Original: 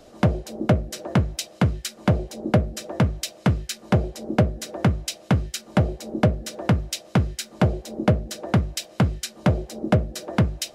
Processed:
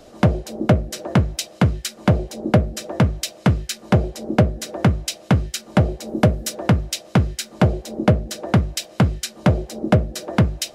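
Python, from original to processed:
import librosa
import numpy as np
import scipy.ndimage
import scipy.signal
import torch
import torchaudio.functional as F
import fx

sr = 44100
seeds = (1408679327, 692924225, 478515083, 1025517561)

y = fx.high_shelf(x, sr, hz=fx.line((6.07, 11000.0), (6.52, 6300.0)), db=10.5, at=(6.07, 6.52), fade=0.02)
y = y * 10.0 ** (3.5 / 20.0)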